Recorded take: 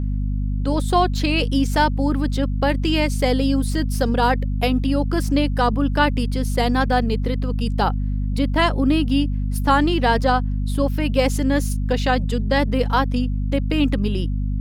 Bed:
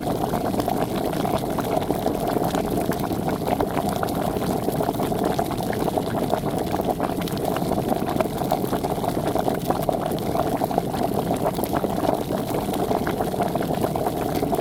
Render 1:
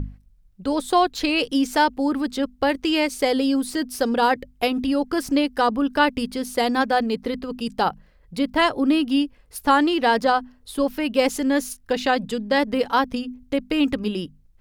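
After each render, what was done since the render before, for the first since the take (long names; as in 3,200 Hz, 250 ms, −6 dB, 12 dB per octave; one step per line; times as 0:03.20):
mains-hum notches 50/100/150/200/250 Hz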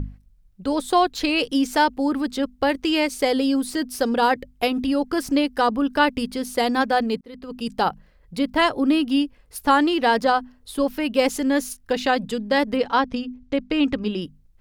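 0:07.21–0:07.68: fade in
0:12.76–0:14.22: low-pass filter 5,700 Hz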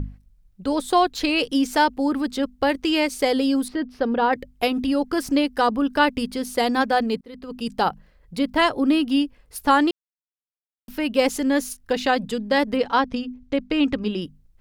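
0:03.68–0:04.33: high-frequency loss of the air 330 metres
0:09.91–0:10.88: silence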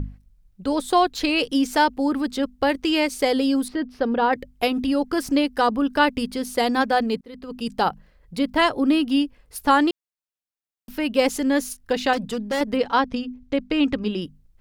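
0:12.13–0:12.61: hard clipping −21 dBFS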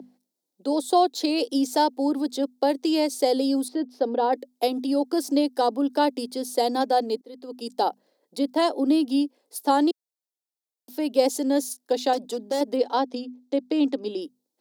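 Butterworth high-pass 270 Hz 36 dB per octave
flat-topped bell 1,800 Hz −13 dB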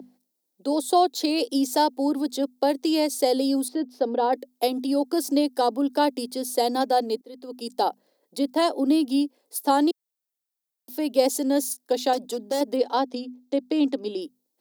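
high-shelf EQ 11,000 Hz +9 dB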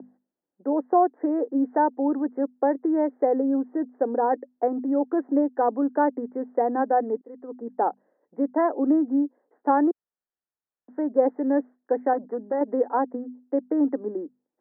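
Butterworth low-pass 1,900 Hz 96 dB per octave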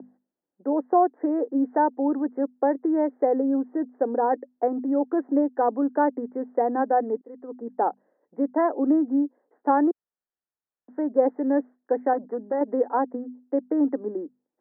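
no processing that can be heard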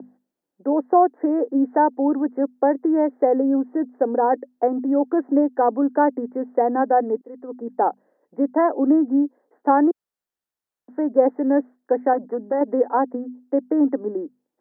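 level +4 dB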